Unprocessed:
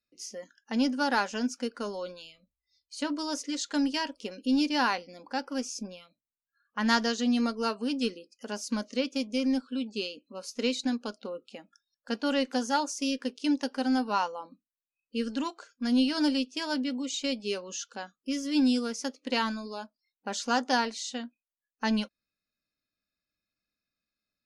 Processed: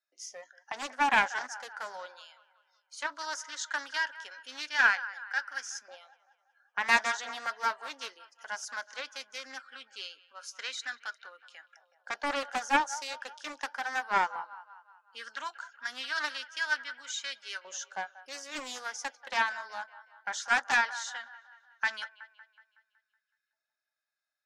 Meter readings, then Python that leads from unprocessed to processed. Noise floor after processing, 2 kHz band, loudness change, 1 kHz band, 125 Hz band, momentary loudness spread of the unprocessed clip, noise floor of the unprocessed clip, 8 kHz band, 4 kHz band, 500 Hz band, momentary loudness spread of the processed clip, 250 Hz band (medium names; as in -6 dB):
under -85 dBFS, +6.5 dB, -2.5 dB, +0.5 dB, no reading, 15 LU, under -85 dBFS, -1.5 dB, -4.0 dB, -10.0 dB, 19 LU, -21.5 dB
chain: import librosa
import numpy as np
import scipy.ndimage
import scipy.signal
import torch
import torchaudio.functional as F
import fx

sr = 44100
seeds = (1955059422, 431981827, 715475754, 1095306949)

p1 = x + fx.echo_wet_bandpass(x, sr, ms=186, feedback_pct=51, hz=1300.0, wet_db=-15, dry=0)
p2 = fx.filter_lfo_highpass(p1, sr, shape='saw_up', hz=0.17, low_hz=720.0, high_hz=1500.0, q=1.9)
p3 = fx.cabinet(p2, sr, low_hz=380.0, low_slope=12, high_hz=9800.0, hz=(470.0, 1100.0, 1600.0, 2600.0, 4500.0, 8300.0), db=(-6, -8, 7, -9, -7, -5))
y = fx.doppler_dist(p3, sr, depth_ms=0.41)